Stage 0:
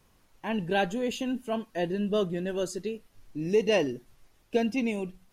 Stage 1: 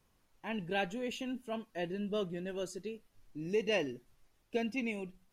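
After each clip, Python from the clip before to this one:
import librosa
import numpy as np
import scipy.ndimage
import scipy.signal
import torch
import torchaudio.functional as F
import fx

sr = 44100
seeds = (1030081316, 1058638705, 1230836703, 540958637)

y = fx.dynamic_eq(x, sr, hz=2300.0, q=2.3, threshold_db=-49.0, ratio=4.0, max_db=7)
y = F.gain(torch.from_numpy(y), -8.5).numpy()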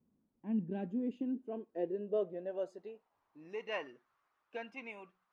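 y = fx.filter_sweep_bandpass(x, sr, from_hz=230.0, to_hz=1200.0, start_s=0.75, end_s=3.63, q=3.1)
y = F.gain(torch.from_numpy(y), 7.0).numpy()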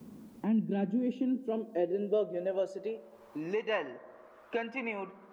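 y = fx.rev_fdn(x, sr, rt60_s=1.3, lf_ratio=0.9, hf_ratio=0.25, size_ms=28.0, drr_db=15.5)
y = fx.band_squash(y, sr, depth_pct=70)
y = F.gain(torch.from_numpy(y), 6.5).numpy()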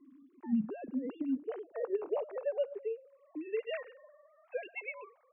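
y = fx.sine_speech(x, sr)
y = F.gain(torch.from_numpy(y), -4.0).numpy()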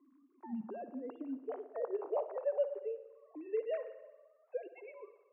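y = fx.filter_sweep_bandpass(x, sr, from_hz=790.0, to_hz=320.0, start_s=3.33, end_s=4.3, q=1.4)
y = fx.rev_spring(y, sr, rt60_s=1.1, pass_ms=(57,), chirp_ms=70, drr_db=12.0)
y = F.gain(torch.from_numpy(y), 3.0).numpy()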